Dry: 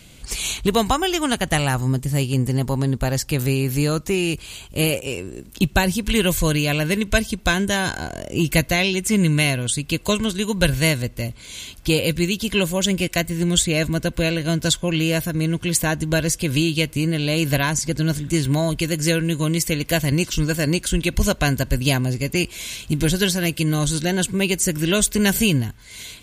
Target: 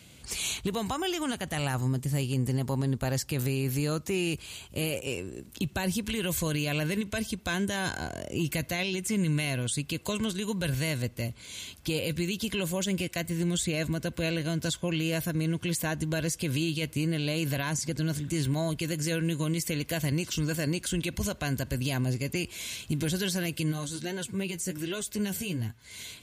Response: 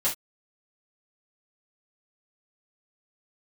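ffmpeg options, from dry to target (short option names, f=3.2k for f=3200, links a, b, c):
-filter_complex "[0:a]highpass=f=60:w=0.5412,highpass=f=60:w=1.3066,alimiter=limit=-14.5dB:level=0:latency=1:release=44,asplit=3[a][b][c];[a]afade=t=out:st=23.71:d=0.02[d];[b]flanger=delay=7.1:depth=4.9:regen=32:speed=1.2:shape=triangular,afade=t=in:st=23.71:d=0.02,afade=t=out:st=25.83:d=0.02[e];[c]afade=t=in:st=25.83:d=0.02[f];[d][e][f]amix=inputs=3:normalize=0,volume=-6dB"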